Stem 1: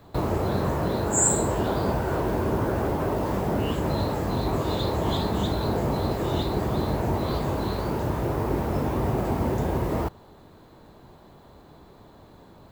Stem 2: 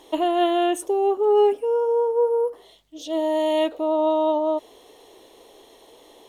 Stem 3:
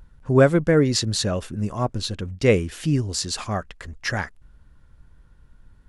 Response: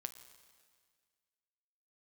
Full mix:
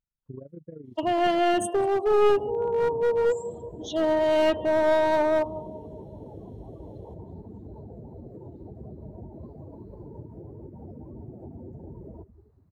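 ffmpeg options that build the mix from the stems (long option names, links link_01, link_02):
-filter_complex "[0:a]equalizer=frequency=3400:width=3.3:gain=-13.5,acompressor=threshold=-32dB:ratio=12,adelay=2150,volume=-1.5dB,asplit=2[link_01][link_02];[link_02]volume=-15dB[link_03];[1:a]lowshelf=frequency=320:gain=-10.5,adelay=850,volume=2dB,asplit=3[link_04][link_05][link_06];[link_05]volume=-22.5dB[link_07];[link_06]volume=-16.5dB[link_08];[2:a]deesser=0.9,equalizer=frequency=78:width_type=o:width=1:gain=-5.5,tremolo=f=26:d=0.824,volume=-13dB,asplit=2[link_09][link_10];[link_10]apad=whole_len=314831[link_11];[link_04][link_11]sidechaincompress=threshold=-40dB:ratio=6:attack=46:release=492[link_12];[link_01][link_09]amix=inputs=2:normalize=0,lowshelf=frequency=75:gain=-7,acompressor=threshold=-40dB:ratio=10,volume=0dB[link_13];[3:a]atrim=start_sample=2205[link_14];[link_07][link_14]afir=irnorm=-1:irlink=0[link_15];[link_03][link_08]amix=inputs=2:normalize=0,aecho=0:1:191|382|573|764|955|1146|1337|1528:1|0.54|0.292|0.157|0.085|0.0459|0.0248|0.0134[link_16];[link_12][link_13][link_15][link_16]amix=inputs=4:normalize=0,afftdn=noise_reduction=26:noise_floor=-37,lowshelf=frequency=310:gain=6,aeval=exprs='clip(val(0),-1,0.1)':channel_layout=same"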